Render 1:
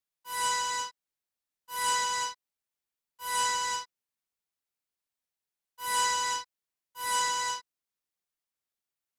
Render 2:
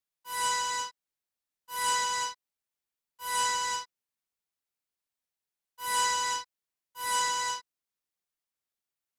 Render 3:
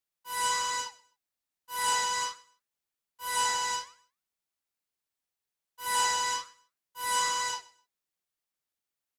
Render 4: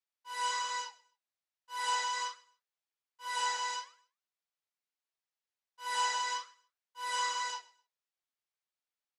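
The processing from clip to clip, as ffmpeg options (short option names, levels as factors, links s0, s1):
-af anull
-af "flanger=delay=2.5:depth=6.5:regen=-88:speed=1.2:shape=sinusoidal,aecho=1:1:128|256:0.0841|0.0194,volume=1.78"
-af "flanger=delay=5.4:depth=7.3:regen=-47:speed=0.42:shape=triangular,highpass=470,lowpass=6000"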